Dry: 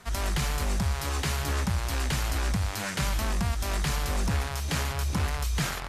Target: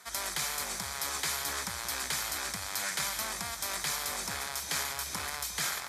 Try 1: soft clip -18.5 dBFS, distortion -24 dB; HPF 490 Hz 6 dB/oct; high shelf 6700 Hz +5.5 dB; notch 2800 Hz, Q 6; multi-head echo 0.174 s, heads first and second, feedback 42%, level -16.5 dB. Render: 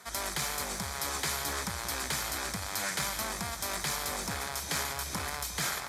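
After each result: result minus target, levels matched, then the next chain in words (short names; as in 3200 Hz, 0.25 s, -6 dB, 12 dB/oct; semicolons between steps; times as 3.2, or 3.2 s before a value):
soft clip: distortion +21 dB; 500 Hz band +4.0 dB
soft clip -7 dBFS, distortion -45 dB; HPF 490 Hz 6 dB/oct; high shelf 6700 Hz +5.5 dB; notch 2800 Hz, Q 6; multi-head echo 0.174 s, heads first and second, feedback 42%, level -16.5 dB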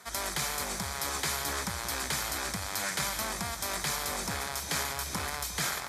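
500 Hz band +4.0 dB
soft clip -7 dBFS, distortion -45 dB; HPF 1200 Hz 6 dB/oct; high shelf 6700 Hz +5.5 dB; notch 2800 Hz, Q 6; multi-head echo 0.174 s, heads first and second, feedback 42%, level -16.5 dB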